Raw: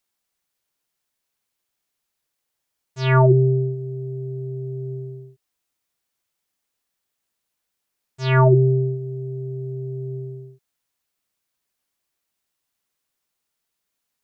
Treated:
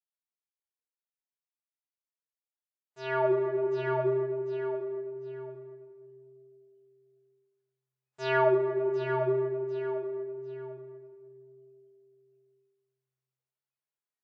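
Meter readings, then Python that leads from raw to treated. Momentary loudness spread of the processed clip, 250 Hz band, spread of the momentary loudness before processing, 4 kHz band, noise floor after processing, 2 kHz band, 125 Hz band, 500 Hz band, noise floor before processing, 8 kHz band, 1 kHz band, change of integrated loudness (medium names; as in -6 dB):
17 LU, -8.0 dB, 18 LU, -9.0 dB, under -85 dBFS, -5.0 dB, -22.5 dB, -3.5 dB, -80 dBFS, no reading, -6.0 dB, -9.0 dB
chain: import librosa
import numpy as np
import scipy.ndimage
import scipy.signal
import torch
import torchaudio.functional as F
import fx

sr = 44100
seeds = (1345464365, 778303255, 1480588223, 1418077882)

p1 = scipy.signal.sosfilt(scipy.signal.butter(2, 370.0, 'highpass', fs=sr, output='sos'), x)
p2 = p1 + fx.echo_feedback(p1, sr, ms=746, feedback_pct=30, wet_db=-12, dry=0)
p3 = fx.noise_reduce_blind(p2, sr, reduce_db=16)
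p4 = fx.room_shoebox(p3, sr, seeds[0], volume_m3=2200.0, walls='mixed', distance_m=1.4)
p5 = fx.rider(p4, sr, range_db=5, speed_s=0.5)
p6 = fx.high_shelf(p5, sr, hz=2400.0, db=-11.0)
y = p6 * librosa.db_to_amplitude(-3.0)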